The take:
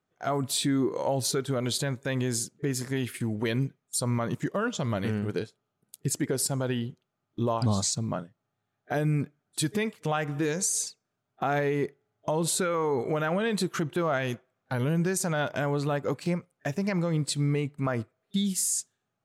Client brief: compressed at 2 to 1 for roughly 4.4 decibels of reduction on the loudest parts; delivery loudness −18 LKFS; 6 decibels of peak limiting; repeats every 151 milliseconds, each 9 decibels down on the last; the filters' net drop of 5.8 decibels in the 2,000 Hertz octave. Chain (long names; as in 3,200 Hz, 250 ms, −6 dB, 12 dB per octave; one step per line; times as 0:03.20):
parametric band 2,000 Hz −8 dB
downward compressor 2 to 1, threshold −30 dBFS
brickwall limiter −24.5 dBFS
repeating echo 151 ms, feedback 35%, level −9 dB
level +16.5 dB